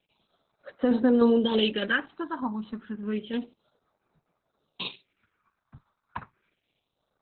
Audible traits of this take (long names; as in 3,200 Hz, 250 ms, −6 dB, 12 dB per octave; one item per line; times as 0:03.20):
a quantiser's noise floor 12 bits, dither none
tremolo saw down 3.3 Hz, depth 40%
phaser sweep stages 4, 0.3 Hz, lowest notch 450–3,200 Hz
Opus